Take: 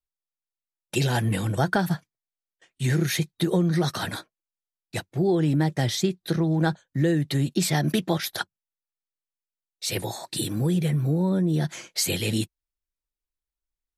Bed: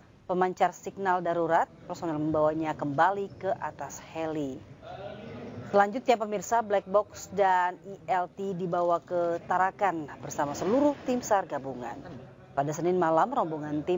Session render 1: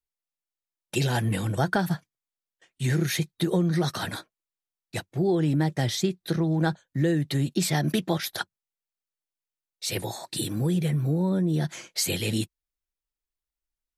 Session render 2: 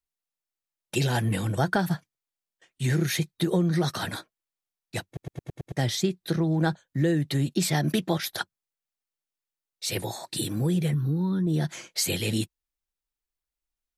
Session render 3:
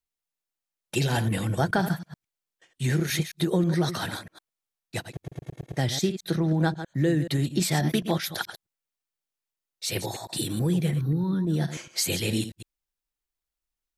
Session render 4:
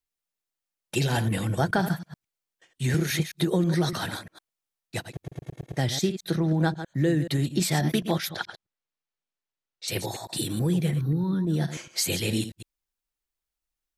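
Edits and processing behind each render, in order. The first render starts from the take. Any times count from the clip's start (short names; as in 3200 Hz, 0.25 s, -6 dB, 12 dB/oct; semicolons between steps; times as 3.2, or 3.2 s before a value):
gain -1.5 dB
5.06 stutter in place 0.11 s, 6 plays; 10.94–11.47 fixed phaser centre 2300 Hz, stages 6
reverse delay 0.107 s, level -10.5 dB
2.94–3.93 three-band squash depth 40%; 8.29–9.88 air absorption 100 m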